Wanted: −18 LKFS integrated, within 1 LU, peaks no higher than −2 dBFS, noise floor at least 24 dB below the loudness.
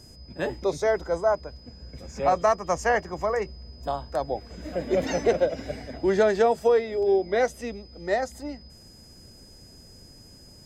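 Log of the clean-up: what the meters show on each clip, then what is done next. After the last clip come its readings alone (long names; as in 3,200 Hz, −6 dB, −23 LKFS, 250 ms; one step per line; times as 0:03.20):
interfering tone 5,000 Hz; level of the tone −51 dBFS; integrated loudness −26.0 LKFS; sample peak −10.5 dBFS; target loudness −18.0 LKFS
→ notch filter 5,000 Hz, Q 30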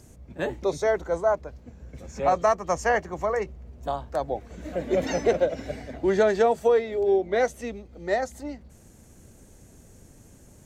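interfering tone none found; integrated loudness −25.5 LKFS; sample peak −11.0 dBFS; target loudness −18.0 LKFS
→ level +7.5 dB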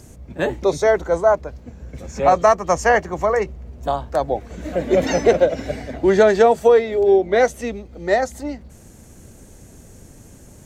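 integrated loudness −18.0 LKFS; sample peak −3.5 dBFS; background noise floor −45 dBFS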